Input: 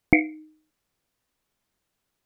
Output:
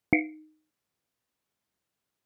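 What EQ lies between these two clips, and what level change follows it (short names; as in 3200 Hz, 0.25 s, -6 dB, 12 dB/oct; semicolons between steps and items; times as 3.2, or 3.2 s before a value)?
HPF 78 Hz; -5.5 dB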